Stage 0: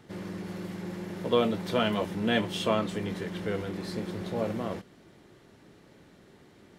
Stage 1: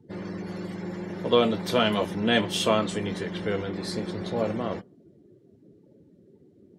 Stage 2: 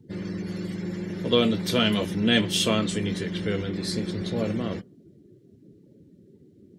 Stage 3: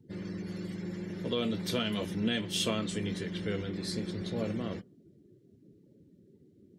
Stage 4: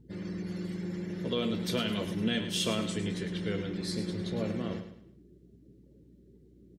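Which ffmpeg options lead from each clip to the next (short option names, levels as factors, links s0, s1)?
-af "bass=f=250:g=-2,treble=f=4000:g=7,afftdn=nr=28:nf=-50,volume=1.58"
-af "equalizer=f=840:t=o:w=1.7:g=-12.5,volume=1.78"
-af "alimiter=limit=0.224:level=0:latency=1:release=253,volume=0.473"
-af "aeval=exprs='val(0)+0.00112*(sin(2*PI*60*n/s)+sin(2*PI*2*60*n/s)/2+sin(2*PI*3*60*n/s)/3+sin(2*PI*4*60*n/s)/4+sin(2*PI*5*60*n/s)/5)':c=same,aecho=1:1:106|212|318|424:0.316|0.114|0.041|0.0148"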